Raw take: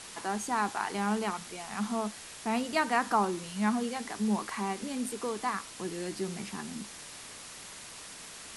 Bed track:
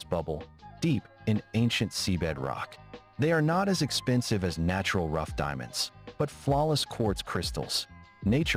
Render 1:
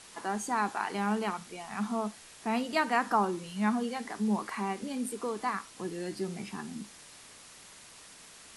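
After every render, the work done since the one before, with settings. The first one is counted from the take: noise print and reduce 6 dB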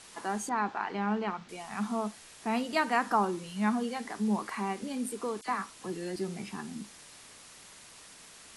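0.49–1.49 s: distance through air 180 m; 5.41–6.16 s: phase dispersion lows, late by 49 ms, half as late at 2.1 kHz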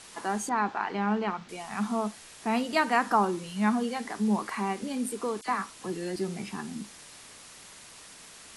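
trim +3 dB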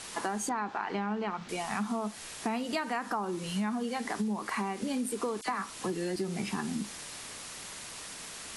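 in parallel at -1 dB: peak limiter -22 dBFS, peak gain reduction 10.5 dB; on the sum: compression 12:1, threshold -29 dBFS, peak gain reduction 13 dB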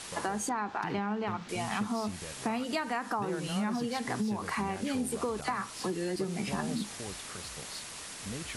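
add bed track -15 dB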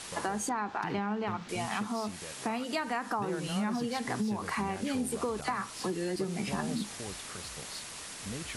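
1.66–2.78 s: bass shelf 110 Hz -11.5 dB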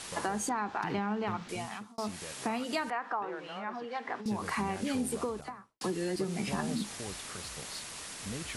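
1.40–1.98 s: fade out; 2.90–4.26 s: band-pass 490–2200 Hz; 5.08–5.81 s: studio fade out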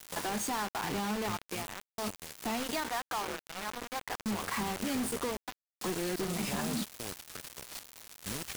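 saturation -30.5 dBFS, distortion -13 dB; bit crusher 6-bit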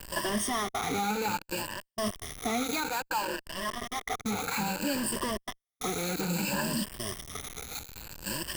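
drifting ripple filter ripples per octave 1.3, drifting +0.6 Hz, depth 16 dB; in parallel at -12 dB: Schmitt trigger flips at -45.5 dBFS

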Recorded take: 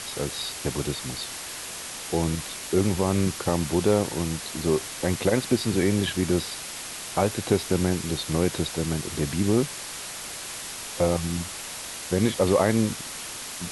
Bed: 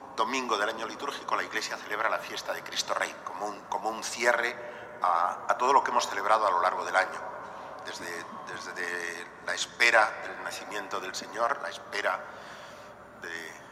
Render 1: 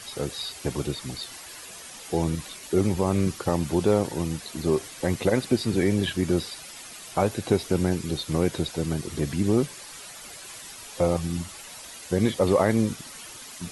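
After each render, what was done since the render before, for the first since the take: noise reduction 10 dB, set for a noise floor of -37 dBFS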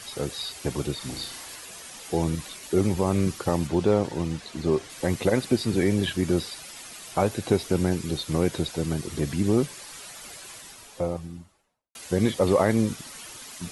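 0.97–1.56 s: flutter echo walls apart 6 m, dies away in 0.41 s; 3.67–4.90 s: distance through air 62 m; 10.31–11.95 s: studio fade out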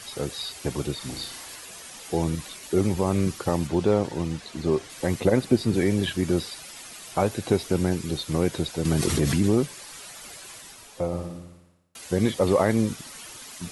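5.20–5.74 s: tilt shelf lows +3 dB; 8.85–9.55 s: level flattener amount 70%; 11.07–12.01 s: flutter echo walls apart 9.8 m, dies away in 0.87 s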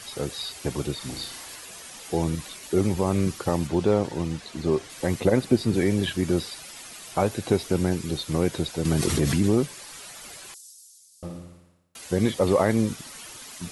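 10.54–11.23 s: inverse Chebyshev high-pass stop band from 1.6 kHz, stop band 60 dB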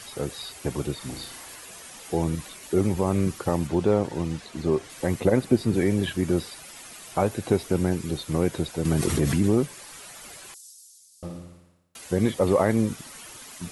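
dynamic bell 4.5 kHz, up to -5 dB, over -46 dBFS, Q 0.93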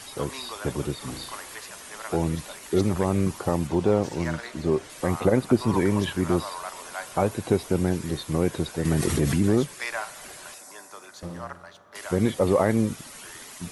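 add bed -10.5 dB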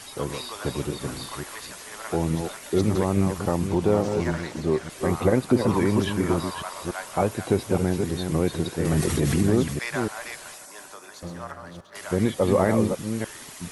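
chunks repeated in reverse 288 ms, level -6 dB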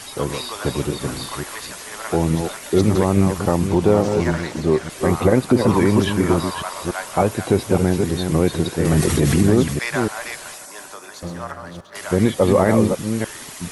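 trim +6 dB; peak limiter -3 dBFS, peak gain reduction 2.5 dB

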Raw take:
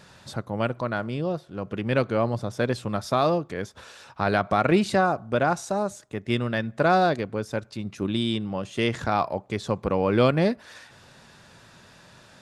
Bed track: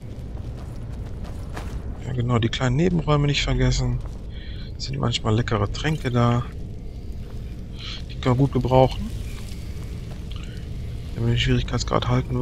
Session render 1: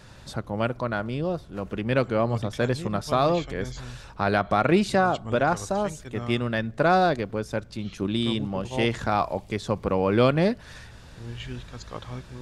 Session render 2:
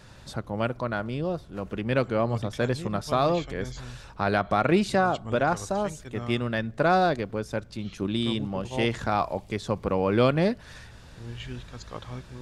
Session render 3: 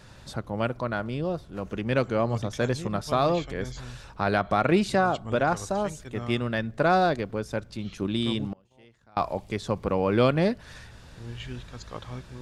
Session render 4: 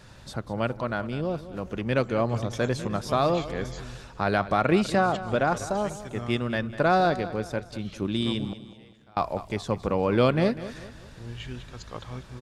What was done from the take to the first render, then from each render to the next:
add bed track -16 dB
trim -1.5 dB
1.64–2.84 s: peaking EQ 6.3 kHz +7 dB 0.32 oct; 8.52–9.17 s: inverted gate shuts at -27 dBFS, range -30 dB
feedback delay 198 ms, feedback 41%, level -14.5 dB

